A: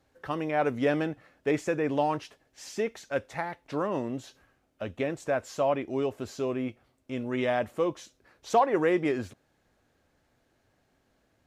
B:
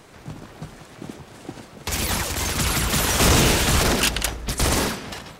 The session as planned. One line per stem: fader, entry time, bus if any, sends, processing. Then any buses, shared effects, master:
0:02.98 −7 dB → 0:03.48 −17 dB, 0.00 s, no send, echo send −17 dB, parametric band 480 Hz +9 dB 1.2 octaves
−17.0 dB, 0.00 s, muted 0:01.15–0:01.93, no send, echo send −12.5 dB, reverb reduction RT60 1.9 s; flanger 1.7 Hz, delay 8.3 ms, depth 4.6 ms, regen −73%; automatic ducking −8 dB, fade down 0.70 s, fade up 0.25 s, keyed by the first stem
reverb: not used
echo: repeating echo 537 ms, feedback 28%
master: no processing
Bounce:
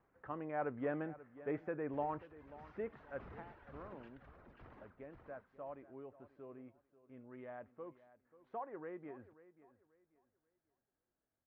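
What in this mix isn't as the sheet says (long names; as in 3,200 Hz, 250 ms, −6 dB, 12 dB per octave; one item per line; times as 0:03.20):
stem A: missing parametric band 480 Hz +9 dB 1.2 octaves
master: extra transistor ladder low-pass 2,000 Hz, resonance 25%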